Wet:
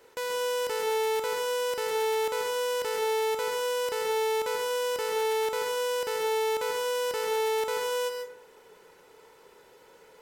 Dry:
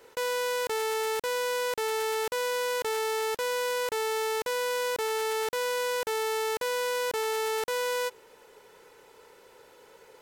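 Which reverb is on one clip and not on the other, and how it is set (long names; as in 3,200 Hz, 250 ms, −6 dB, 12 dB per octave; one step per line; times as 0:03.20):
dense smooth reverb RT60 0.52 s, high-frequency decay 0.5×, pre-delay 120 ms, DRR 3 dB
level −2.5 dB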